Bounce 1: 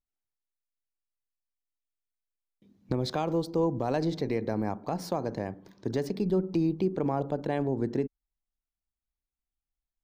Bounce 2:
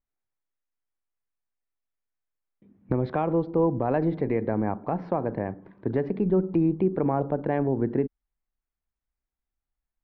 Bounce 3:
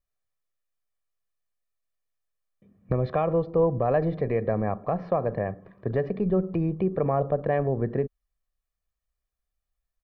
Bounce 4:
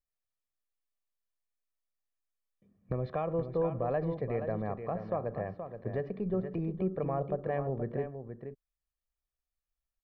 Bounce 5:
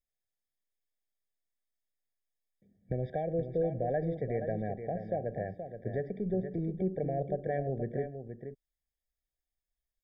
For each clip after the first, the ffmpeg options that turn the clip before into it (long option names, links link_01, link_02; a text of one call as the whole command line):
ffmpeg -i in.wav -af "lowpass=frequency=2200:width=0.5412,lowpass=frequency=2200:width=1.3066,volume=4dB" out.wav
ffmpeg -i in.wav -af "aecho=1:1:1.7:0.61" out.wav
ffmpeg -i in.wav -af "aecho=1:1:475:0.376,volume=-8.5dB" out.wav
ffmpeg -i in.wav -af "afftfilt=real='re*eq(mod(floor(b*sr/1024/780),2),0)':imag='im*eq(mod(floor(b*sr/1024/780),2),0)':win_size=1024:overlap=0.75" out.wav